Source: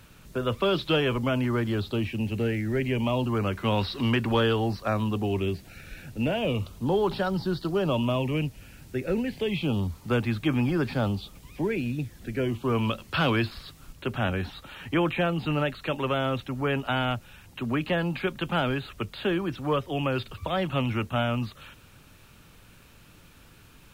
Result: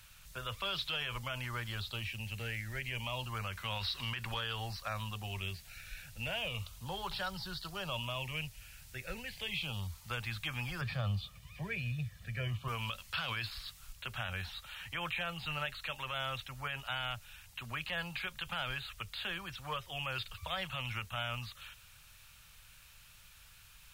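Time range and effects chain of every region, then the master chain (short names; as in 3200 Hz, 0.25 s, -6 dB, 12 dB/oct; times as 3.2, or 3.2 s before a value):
10.81–12.68 HPF 120 Hz + tone controls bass +11 dB, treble -9 dB + comb 1.7 ms, depth 50%
whole clip: passive tone stack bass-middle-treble 10-0-10; notch 420 Hz, Q 12; limiter -27.5 dBFS; gain +1 dB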